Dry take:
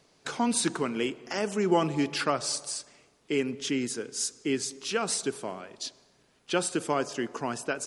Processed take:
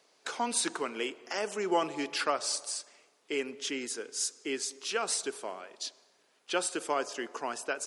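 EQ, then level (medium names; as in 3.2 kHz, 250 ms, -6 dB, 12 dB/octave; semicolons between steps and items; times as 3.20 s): high-pass 420 Hz 12 dB/octave; -1.5 dB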